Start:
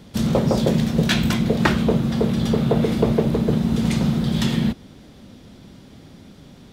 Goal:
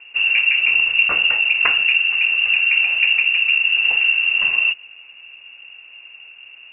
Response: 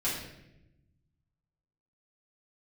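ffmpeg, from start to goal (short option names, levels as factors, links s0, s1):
-filter_complex "[0:a]equalizer=f=69:w=0.41:g=8.5,lowpass=f=2500:t=q:w=0.5098,lowpass=f=2500:t=q:w=0.6013,lowpass=f=2500:t=q:w=0.9,lowpass=f=2500:t=q:w=2.563,afreqshift=-2900,asettb=1/sr,asplit=3[s0][s1][s2];[s0]atrim=end=0.634[s3];[s1]atrim=start=0.63:end=1.03,asetpts=PTS-STARTPTS,afade=t=in:d=0.004:c=qsin,afade=t=out:st=0.396:d=0.004:c=qsin,lowshelf=f=170:g=11[s4];[s2]atrim=start=1.026[s5];[s3][s4]acrossfade=d=0.004:c1=hsin:c2=qsin[s6];[s6][s5]acrossfade=d=0.004:c1=qsin:c2=hsin,volume=0.794"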